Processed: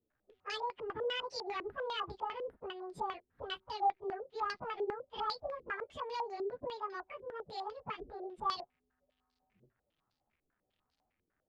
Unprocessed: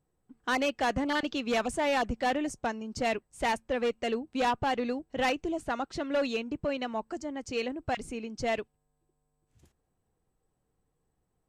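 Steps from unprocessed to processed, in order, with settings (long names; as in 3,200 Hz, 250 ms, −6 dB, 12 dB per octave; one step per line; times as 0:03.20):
phase-vocoder pitch shift without resampling +9 semitones
downward compressor 2 to 1, threshold −36 dBFS, peak gain reduction 6.5 dB
surface crackle 290 per second −64 dBFS
low-pass on a step sequencer 10 Hz 400–4,600 Hz
level −6 dB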